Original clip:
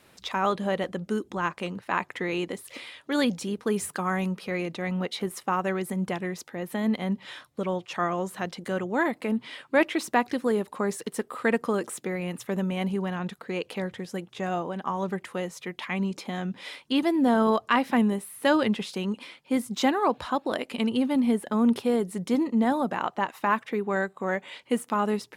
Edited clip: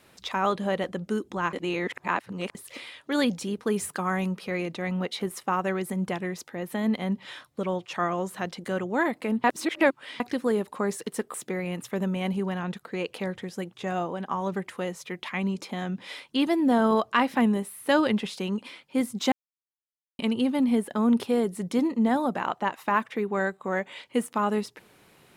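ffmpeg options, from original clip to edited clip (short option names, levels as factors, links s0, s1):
-filter_complex "[0:a]asplit=8[s0][s1][s2][s3][s4][s5][s6][s7];[s0]atrim=end=1.532[s8];[s1]atrim=start=1.528:end=2.552,asetpts=PTS-STARTPTS,areverse[s9];[s2]atrim=start=2.548:end=9.442[s10];[s3]atrim=start=9.438:end=10.202,asetpts=PTS-STARTPTS,areverse[s11];[s4]atrim=start=10.198:end=11.342[s12];[s5]atrim=start=11.898:end=19.88,asetpts=PTS-STARTPTS,afade=t=out:st=7.978:d=0.004:c=hsin[s13];[s6]atrim=start=19.88:end=20.75,asetpts=PTS-STARTPTS,volume=0[s14];[s7]atrim=start=20.75,asetpts=PTS-STARTPTS,afade=t=in:d=0.004:c=hsin[s15];[s8][s9]acrossfade=d=0.004:c1=hsin:c2=hsin[s16];[s16][s10]acrossfade=d=0.004:c1=hsin:c2=hsin[s17];[s17][s11]acrossfade=d=0.004:c1=hsin:c2=hsin[s18];[s18][s12]acrossfade=d=0.004:c1=hsin:c2=hsin[s19];[s13][s14][s15]concat=n=3:v=0:a=1[s20];[s19][s20]acrossfade=d=0.004:c1=hsin:c2=hsin"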